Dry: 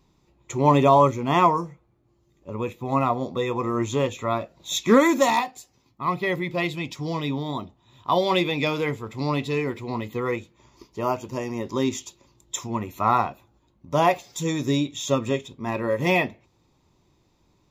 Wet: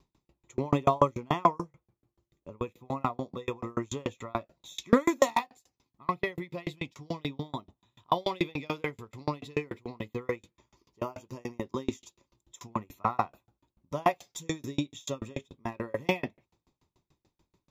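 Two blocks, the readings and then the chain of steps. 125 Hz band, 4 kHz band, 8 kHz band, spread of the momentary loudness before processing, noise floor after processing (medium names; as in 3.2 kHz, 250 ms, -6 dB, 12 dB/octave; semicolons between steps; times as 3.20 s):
-9.5 dB, -10.0 dB, -10.5 dB, 13 LU, under -85 dBFS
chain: sawtooth tremolo in dB decaying 6.9 Hz, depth 36 dB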